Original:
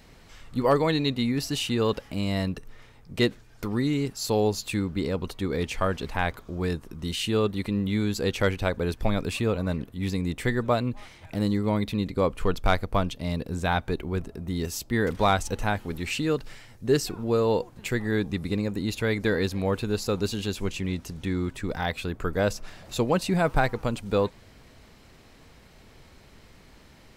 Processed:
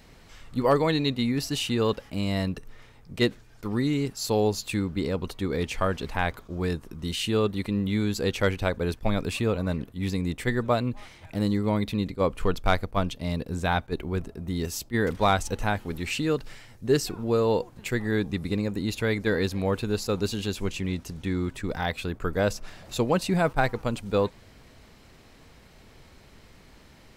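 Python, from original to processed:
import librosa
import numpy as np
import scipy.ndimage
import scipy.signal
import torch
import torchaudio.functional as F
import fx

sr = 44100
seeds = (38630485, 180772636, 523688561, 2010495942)

y = fx.attack_slew(x, sr, db_per_s=460.0)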